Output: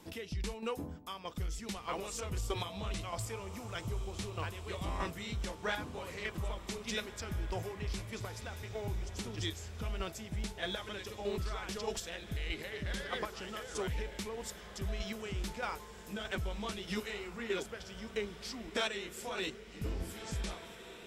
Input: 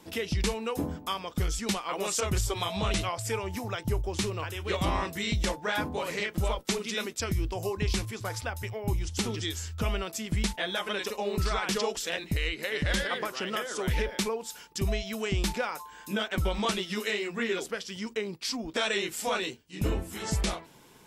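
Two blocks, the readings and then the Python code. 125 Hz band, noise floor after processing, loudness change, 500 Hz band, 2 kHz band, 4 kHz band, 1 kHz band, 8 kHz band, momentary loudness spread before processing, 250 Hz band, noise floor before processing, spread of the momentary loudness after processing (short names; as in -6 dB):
-8.0 dB, -51 dBFS, -8.5 dB, -8.5 dB, -9.0 dB, -9.0 dB, -8.5 dB, -10.5 dB, 5 LU, -9.5 dB, -51 dBFS, 5 LU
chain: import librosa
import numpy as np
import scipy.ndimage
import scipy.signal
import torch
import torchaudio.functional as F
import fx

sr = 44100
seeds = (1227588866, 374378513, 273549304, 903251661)

p1 = fx.low_shelf(x, sr, hz=95.0, db=6.0)
p2 = fx.chopper(p1, sr, hz=1.6, depth_pct=60, duty_pct=20)
p3 = 10.0 ** (-35.0 / 20.0) * np.tanh(p2 / 10.0 ** (-35.0 / 20.0))
p4 = p2 + (p3 * librosa.db_to_amplitude(-8.0))
p5 = fx.echo_diffused(p4, sr, ms=1643, feedback_pct=49, wet_db=-12)
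y = p5 * librosa.db_to_amplitude(-6.0)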